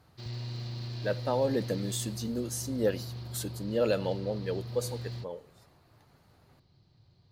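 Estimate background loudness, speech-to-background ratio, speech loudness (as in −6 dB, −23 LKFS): −40.0 LKFS, 7.0 dB, −33.0 LKFS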